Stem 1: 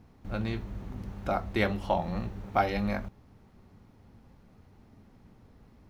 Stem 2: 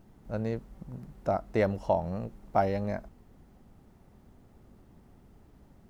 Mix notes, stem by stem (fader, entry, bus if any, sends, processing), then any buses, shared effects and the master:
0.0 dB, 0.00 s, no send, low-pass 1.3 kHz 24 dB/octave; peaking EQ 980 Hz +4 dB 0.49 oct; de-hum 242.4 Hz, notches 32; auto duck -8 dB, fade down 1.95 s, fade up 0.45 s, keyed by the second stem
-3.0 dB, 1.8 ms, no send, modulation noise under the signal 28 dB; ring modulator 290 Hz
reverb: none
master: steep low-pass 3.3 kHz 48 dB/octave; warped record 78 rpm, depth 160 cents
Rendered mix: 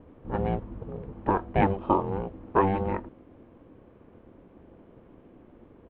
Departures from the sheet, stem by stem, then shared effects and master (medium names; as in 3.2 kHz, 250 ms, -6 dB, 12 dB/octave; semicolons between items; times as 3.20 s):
stem 2 -3.0 dB -> +6.0 dB; master: missing warped record 78 rpm, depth 160 cents